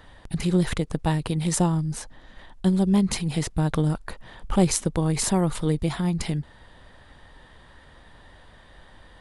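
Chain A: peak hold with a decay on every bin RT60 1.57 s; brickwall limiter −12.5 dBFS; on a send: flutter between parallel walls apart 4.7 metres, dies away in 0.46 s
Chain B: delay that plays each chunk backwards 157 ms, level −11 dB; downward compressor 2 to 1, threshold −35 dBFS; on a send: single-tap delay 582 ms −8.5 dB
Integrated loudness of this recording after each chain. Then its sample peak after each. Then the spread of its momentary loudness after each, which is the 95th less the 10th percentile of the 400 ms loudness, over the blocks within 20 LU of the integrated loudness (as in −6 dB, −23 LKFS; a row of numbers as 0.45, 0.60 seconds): −21.5, −33.0 LKFS; −7.0, −15.0 dBFS; 10, 20 LU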